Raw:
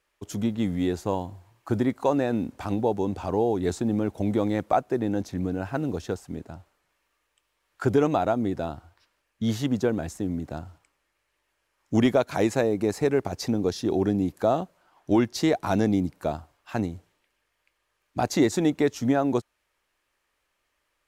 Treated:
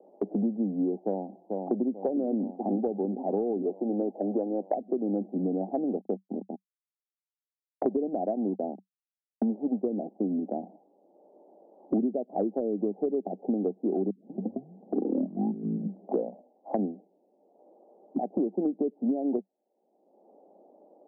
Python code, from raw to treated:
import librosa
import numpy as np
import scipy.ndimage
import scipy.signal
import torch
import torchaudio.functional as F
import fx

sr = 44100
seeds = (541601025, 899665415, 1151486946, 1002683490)

y = fx.echo_throw(x, sr, start_s=1.05, length_s=0.88, ms=440, feedback_pct=80, wet_db=-12.0)
y = fx.highpass(y, sr, hz=340.0, slope=12, at=(3.62, 4.76))
y = fx.backlash(y, sr, play_db=-27.0, at=(5.96, 9.87))
y = fx.edit(y, sr, fx.tape_start(start_s=14.1, length_s=2.82),
    fx.fade_in_from(start_s=18.18, length_s=0.46, floor_db=-19.5), tone=tone)
y = scipy.signal.sosfilt(scipy.signal.cheby1(5, 1.0, [190.0, 800.0], 'bandpass', fs=sr, output='sos'), y)
y = fx.env_lowpass_down(y, sr, base_hz=460.0, full_db=-19.5)
y = fx.band_squash(y, sr, depth_pct=100)
y = y * 10.0 ** (-2.0 / 20.0)